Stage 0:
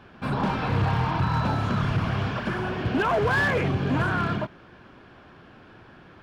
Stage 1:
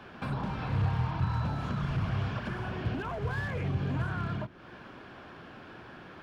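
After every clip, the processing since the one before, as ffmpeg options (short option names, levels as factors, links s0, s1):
-filter_complex "[0:a]lowshelf=f=110:g=-6,bandreject=f=52.17:t=h:w=4,bandreject=f=104.34:t=h:w=4,bandreject=f=156.51:t=h:w=4,bandreject=f=208.68:t=h:w=4,bandreject=f=260.85:t=h:w=4,bandreject=f=313.02:t=h:w=4,bandreject=f=365.19:t=h:w=4,bandreject=f=417.36:t=h:w=4,bandreject=f=469.53:t=h:w=4,acrossover=split=130[s0][s1];[s1]acompressor=threshold=0.0112:ratio=6[s2];[s0][s2]amix=inputs=2:normalize=0,volume=1.33"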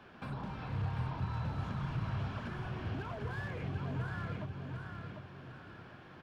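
-af "aecho=1:1:746|1492|2238|2984:0.562|0.191|0.065|0.0221,volume=0.422"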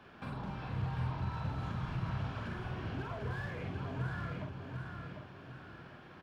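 -filter_complex "[0:a]asplit=2[s0][s1];[s1]adelay=47,volume=0.596[s2];[s0][s2]amix=inputs=2:normalize=0,volume=0.891"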